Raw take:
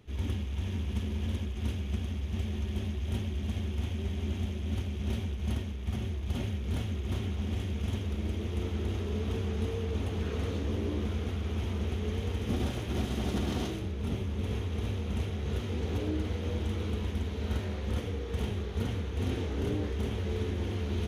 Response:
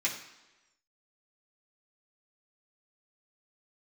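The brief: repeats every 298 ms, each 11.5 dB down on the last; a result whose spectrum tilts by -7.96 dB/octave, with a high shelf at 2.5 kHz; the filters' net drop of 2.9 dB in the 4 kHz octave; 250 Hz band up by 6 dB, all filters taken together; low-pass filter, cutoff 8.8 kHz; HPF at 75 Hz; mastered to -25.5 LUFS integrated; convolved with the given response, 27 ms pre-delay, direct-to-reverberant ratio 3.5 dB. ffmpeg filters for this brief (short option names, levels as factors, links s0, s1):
-filter_complex "[0:a]highpass=75,lowpass=8800,equalizer=f=250:t=o:g=7.5,highshelf=f=2500:g=5.5,equalizer=f=4000:t=o:g=-9,aecho=1:1:298|596|894:0.266|0.0718|0.0194,asplit=2[s0][s1];[1:a]atrim=start_sample=2205,adelay=27[s2];[s1][s2]afir=irnorm=-1:irlink=0,volume=0.299[s3];[s0][s3]amix=inputs=2:normalize=0,volume=1.88"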